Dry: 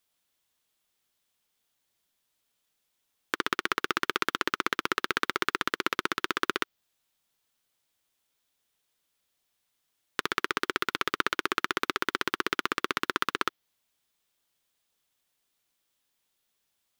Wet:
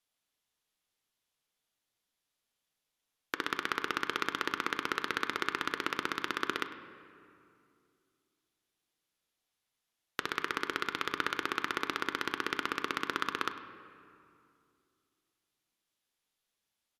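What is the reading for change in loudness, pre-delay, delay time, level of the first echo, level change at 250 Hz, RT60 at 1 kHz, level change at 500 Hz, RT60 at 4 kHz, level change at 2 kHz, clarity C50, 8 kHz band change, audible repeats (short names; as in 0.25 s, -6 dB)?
-4.5 dB, 4 ms, 0.101 s, -17.5 dB, -4.0 dB, 2.4 s, -5.0 dB, 1.6 s, -5.0 dB, 9.5 dB, -6.5 dB, 1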